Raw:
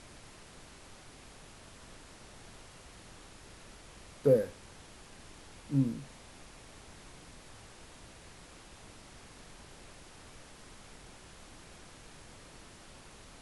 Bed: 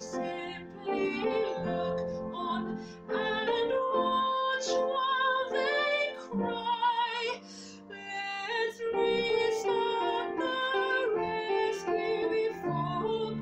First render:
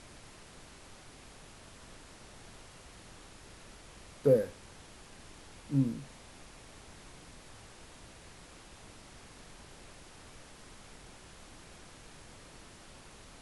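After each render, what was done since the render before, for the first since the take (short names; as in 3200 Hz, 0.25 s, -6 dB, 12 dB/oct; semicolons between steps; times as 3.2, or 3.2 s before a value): nothing audible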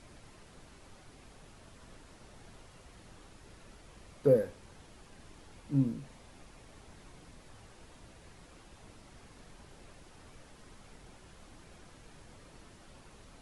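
denoiser 6 dB, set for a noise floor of -54 dBFS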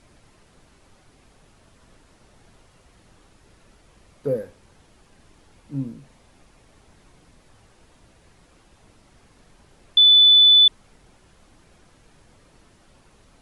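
9.97–10.68 bleep 3490 Hz -9 dBFS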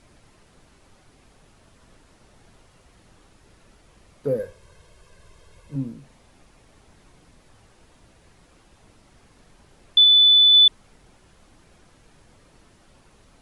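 4.39–5.76 comb 1.9 ms, depth 73%; 10.04–10.54 air absorption 61 m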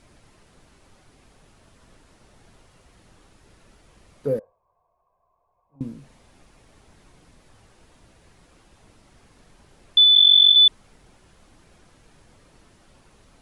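4.39–5.81 vocal tract filter a; 10.15–10.56 sine-wave speech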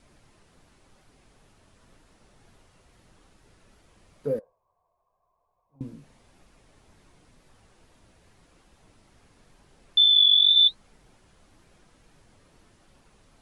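wow and flutter 19 cents; flange 0.92 Hz, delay 3.7 ms, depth 8.4 ms, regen -64%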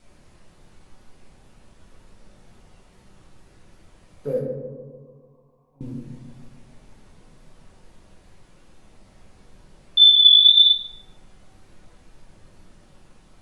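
darkening echo 0.148 s, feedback 63%, low-pass 1100 Hz, level -7 dB; shoebox room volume 140 m³, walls mixed, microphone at 1 m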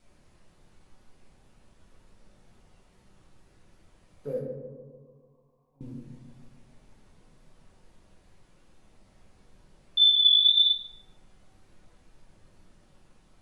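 gain -7.5 dB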